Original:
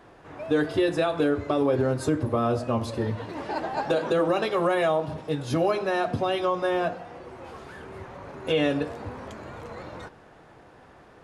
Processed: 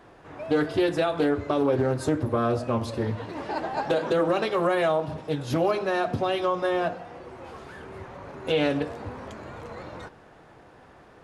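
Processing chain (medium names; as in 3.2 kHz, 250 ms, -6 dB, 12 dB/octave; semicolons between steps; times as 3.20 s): loudspeaker Doppler distortion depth 0.24 ms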